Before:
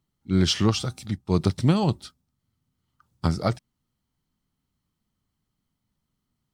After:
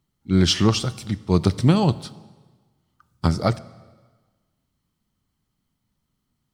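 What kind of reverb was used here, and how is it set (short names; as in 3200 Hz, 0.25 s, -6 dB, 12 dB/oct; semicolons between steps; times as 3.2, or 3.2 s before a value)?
plate-style reverb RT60 1.4 s, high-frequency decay 0.9×, DRR 17 dB; gain +3.5 dB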